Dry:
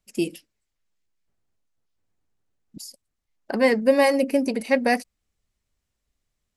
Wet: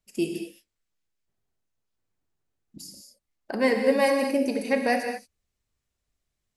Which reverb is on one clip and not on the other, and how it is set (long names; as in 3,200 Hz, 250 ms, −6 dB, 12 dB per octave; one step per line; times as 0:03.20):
reverb whose tail is shaped and stops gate 250 ms flat, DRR 3 dB
level −4 dB